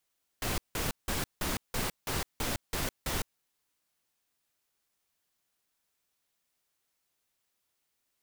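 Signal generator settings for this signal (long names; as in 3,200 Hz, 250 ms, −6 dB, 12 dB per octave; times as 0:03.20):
noise bursts pink, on 0.16 s, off 0.17 s, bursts 9, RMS −32 dBFS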